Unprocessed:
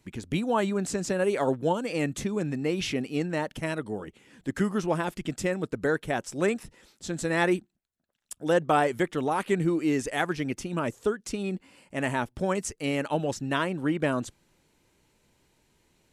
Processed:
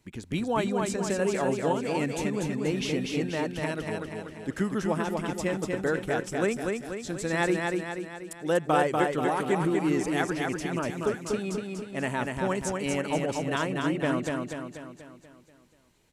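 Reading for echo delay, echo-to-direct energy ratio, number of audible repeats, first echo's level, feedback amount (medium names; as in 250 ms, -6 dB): 242 ms, -2.0 dB, 6, -3.5 dB, 52%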